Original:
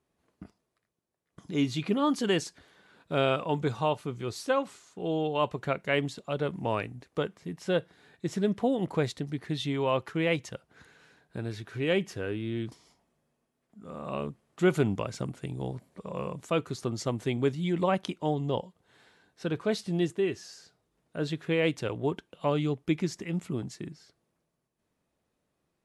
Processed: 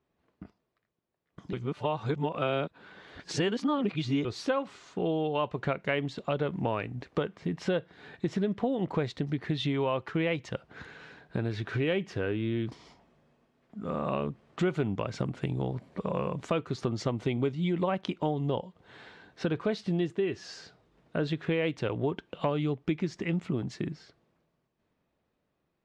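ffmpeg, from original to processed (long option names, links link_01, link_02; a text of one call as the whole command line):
ffmpeg -i in.wav -filter_complex "[0:a]asettb=1/sr,asplit=3[link_01][link_02][link_03];[link_01]atrim=end=17.134[link_04];[link_02]atrim=start=17.13:end=17.74,asetpts=PTS-STARTPTS,afade=type=in:duration=0.004:curve=qsin,afade=type=out:start_time=0.606:duration=0.004:curve=qsin,asuperstop=centerf=1700:order=4:qfactor=7.7[link_05];[link_03]atrim=start=17.736[link_06];[link_04][link_05]acrossfade=duration=0.004:curve1=hsin:curve2=qsin[link_07];[link_07][link_06]acrossfade=duration=0.004:curve1=qsin:curve2=hsin,asplit=3[link_08][link_09][link_10];[link_08]atrim=end=1.532[link_11];[link_09]atrim=start=1.528:end=4.252,asetpts=PTS-STARTPTS,areverse[link_12];[link_10]atrim=start=4.248[link_13];[link_11][link_12]acrossfade=duration=0.004:curve1=hsin:curve2=hsin[link_14];[link_14][link_13]acrossfade=duration=0.004:curve1=hsin:curve2=hsin,dynaudnorm=framelen=480:gausssize=9:maxgain=11.5dB,lowpass=3900,acompressor=threshold=-28dB:ratio=4" out.wav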